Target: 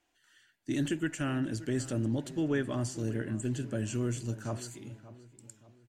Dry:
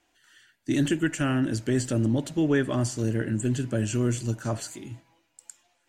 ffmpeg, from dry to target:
-filter_complex "[0:a]asplit=2[s0][s1];[s1]adelay=578,lowpass=f=2000:p=1,volume=0.158,asplit=2[s2][s3];[s3]adelay=578,lowpass=f=2000:p=1,volume=0.42,asplit=2[s4][s5];[s5]adelay=578,lowpass=f=2000:p=1,volume=0.42,asplit=2[s6][s7];[s7]adelay=578,lowpass=f=2000:p=1,volume=0.42[s8];[s0][s2][s4][s6][s8]amix=inputs=5:normalize=0,volume=0.447"

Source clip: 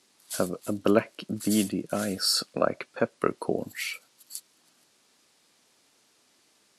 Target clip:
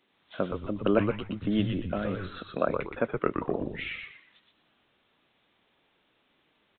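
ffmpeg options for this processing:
-filter_complex "[0:a]asplit=2[s0][s1];[s1]asplit=4[s2][s3][s4][s5];[s2]adelay=120,afreqshift=-99,volume=0.596[s6];[s3]adelay=240,afreqshift=-198,volume=0.191[s7];[s4]adelay=360,afreqshift=-297,volume=0.061[s8];[s5]adelay=480,afreqshift=-396,volume=0.0195[s9];[s6][s7][s8][s9]amix=inputs=4:normalize=0[s10];[s0][s10]amix=inputs=2:normalize=0,aresample=8000,aresample=44100,volume=0.75"

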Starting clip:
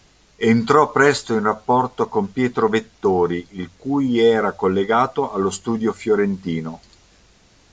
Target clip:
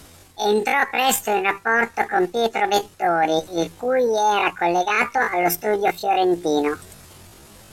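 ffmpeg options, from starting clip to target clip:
-af "areverse,acompressor=threshold=0.0631:ratio=10,areverse,asetrate=80880,aresample=44100,atempo=0.545254,volume=2.66"

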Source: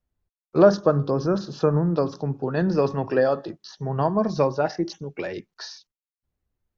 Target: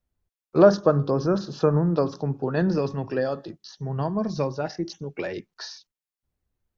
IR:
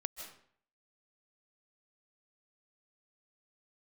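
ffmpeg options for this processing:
-filter_complex "[0:a]asettb=1/sr,asplit=3[s0][s1][s2];[s0]atrim=end=2.784[s3];[s1]atrim=start=2.78:end=4.99,asetpts=PTS-STARTPTS,afade=t=in:d=0.004:c=qsin,afade=t=out:st=2.206:d=0.004:c=qsin,equalizer=f=840:w=0.42:g=-7[s4];[s2]atrim=start=4.986[s5];[s3][s4]acrossfade=d=0.004:c1=hsin:c2=qsin[s6];[s6][s5]acrossfade=d=0.004:c1=qsin:c2=hsin"

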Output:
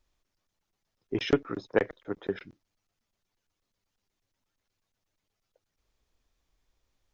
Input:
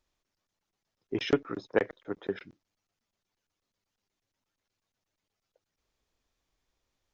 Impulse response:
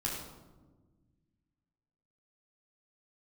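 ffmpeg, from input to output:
-af "lowshelf=f=71:g=9,volume=1.12"

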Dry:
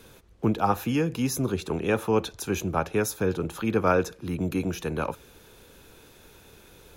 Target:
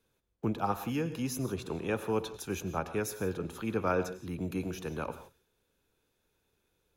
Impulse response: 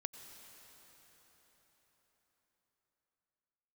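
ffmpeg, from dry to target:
-filter_complex "[0:a]agate=range=0.141:threshold=0.00501:ratio=16:detection=peak[s0];[1:a]atrim=start_sample=2205,afade=t=out:st=0.23:d=0.01,atrim=end_sample=10584[s1];[s0][s1]afir=irnorm=-1:irlink=0,volume=0.596"

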